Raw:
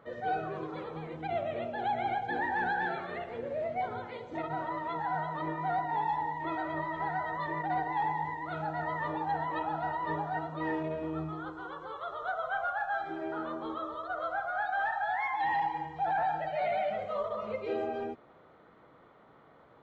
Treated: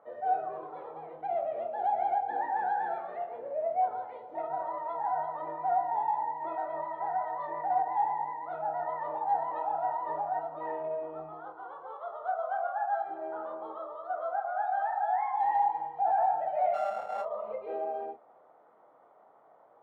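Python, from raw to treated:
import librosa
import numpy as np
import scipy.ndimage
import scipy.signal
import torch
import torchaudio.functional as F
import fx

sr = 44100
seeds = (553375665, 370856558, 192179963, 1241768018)

y = fx.sample_sort(x, sr, block=32, at=(16.73, 17.21), fade=0.02)
y = fx.bandpass_q(y, sr, hz=740.0, q=2.7)
y = fx.doubler(y, sr, ms=27.0, db=-8.0)
y = F.gain(torch.from_numpy(y), 4.0).numpy()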